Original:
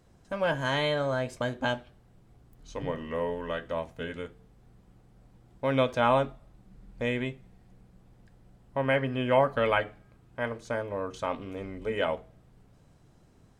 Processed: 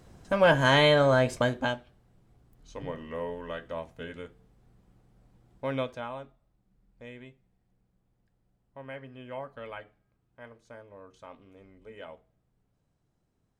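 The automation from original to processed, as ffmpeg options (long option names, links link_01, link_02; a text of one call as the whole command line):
ffmpeg -i in.wav -af "volume=7dB,afade=type=out:start_time=1.3:duration=0.47:silence=0.281838,afade=type=out:start_time=5.67:duration=0.42:silence=0.251189" out.wav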